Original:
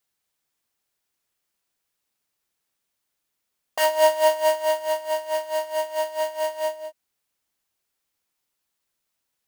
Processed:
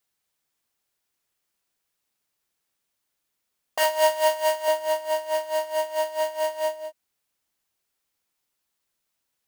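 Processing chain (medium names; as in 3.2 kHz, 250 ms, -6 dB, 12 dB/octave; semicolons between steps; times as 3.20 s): 3.83–4.68 s: bass shelf 390 Hz -11 dB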